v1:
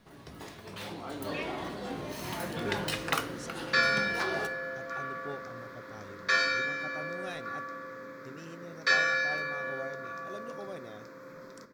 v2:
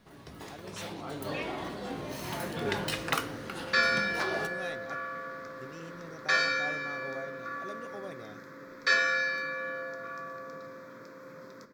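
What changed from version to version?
speech: entry -2.65 s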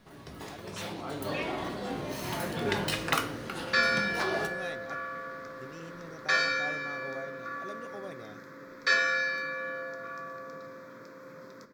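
first sound: send +6.0 dB

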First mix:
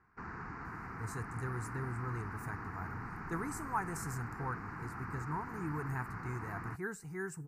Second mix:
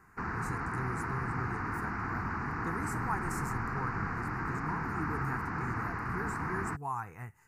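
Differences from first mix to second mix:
speech: entry -0.65 s; background +9.0 dB

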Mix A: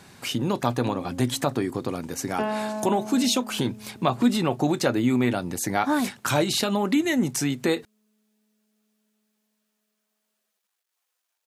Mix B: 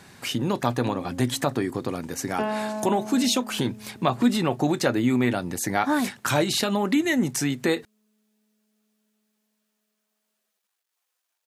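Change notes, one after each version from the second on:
speech: add peaking EQ 1.8 kHz +3.5 dB 0.35 oct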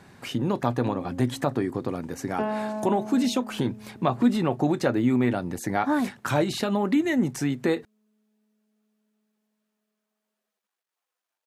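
master: add treble shelf 2.2 kHz -10 dB

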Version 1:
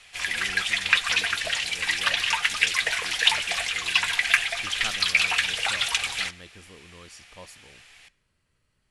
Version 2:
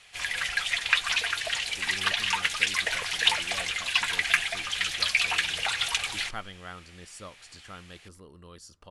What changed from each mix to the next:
speech: entry +1.50 s; reverb: off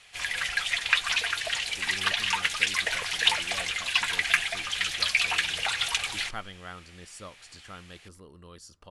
no change

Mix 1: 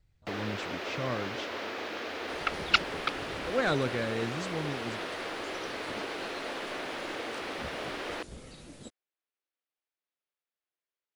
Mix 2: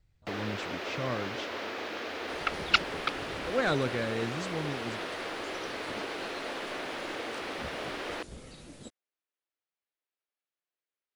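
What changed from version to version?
no change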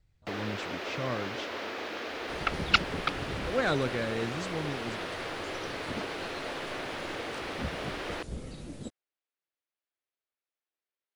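second sound: add bass shelf 500 Hz +9 dB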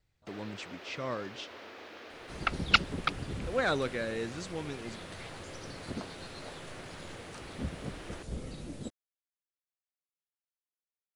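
speech: add bass shelf 180 Hz -10.5 dB; first sound -11.0 dB

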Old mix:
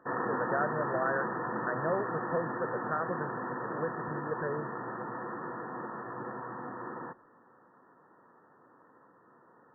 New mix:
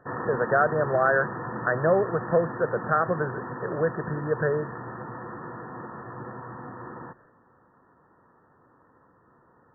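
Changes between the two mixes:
speech +10.5 dB; background: remove high-pass 200 Hz 12 dB/octave

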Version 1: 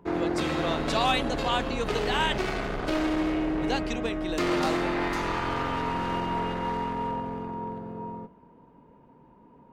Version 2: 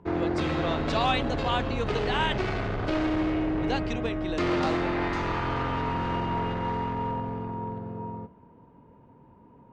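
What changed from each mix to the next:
background: add peaking EQ 98 Hz +14.5 dB 0.47 oct; master: add distance through air 100 m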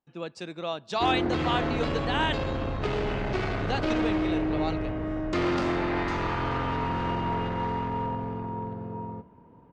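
background: entry +0.95 s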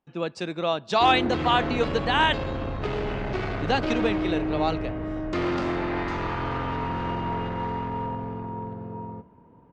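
speech +7.0 dB; master: add treble shelf 5.9 kHz -6 dB

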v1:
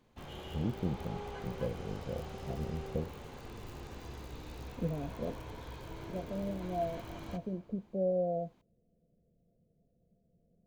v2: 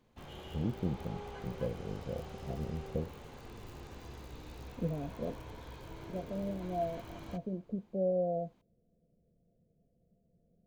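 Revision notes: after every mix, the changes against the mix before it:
background: send -7.0 dB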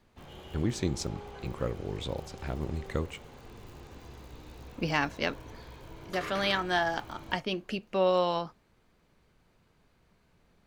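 speech: remove rippled Chebyshev low-pass 710 Hz, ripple 9 dB

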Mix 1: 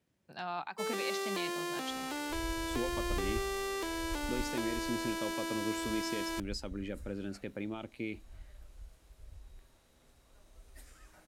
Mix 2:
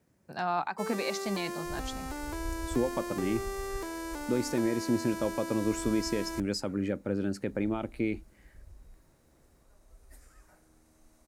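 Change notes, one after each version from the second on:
speech +9.0 dB; second sound: entry -0.65 s; master: add peaking EQ 3.2 kHz -10 dB 0.95 oct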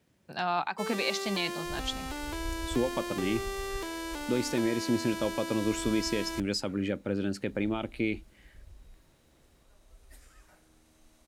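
master: add peaking EQ 3.2 kHz +10 dB 0.95 oct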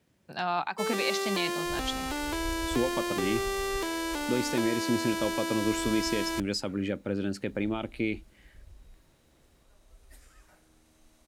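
first sound +5.0 dB

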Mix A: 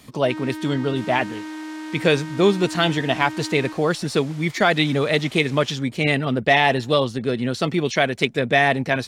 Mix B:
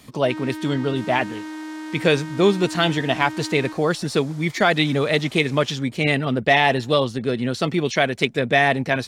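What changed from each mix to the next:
second sound: add peaking EQ 2.6 kHz -9 dB 0.89 oct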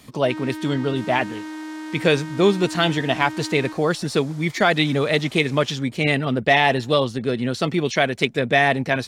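no change

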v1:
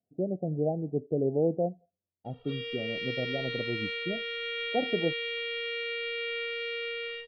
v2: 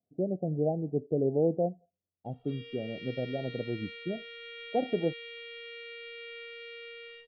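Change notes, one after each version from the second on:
background -10.5 dB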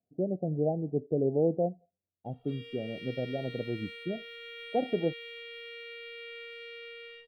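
master: remove low-pass 5.7 kHz 24 dB/octave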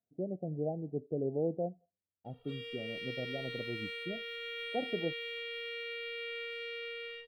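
speech -6.5 dB; background +3.5 dB

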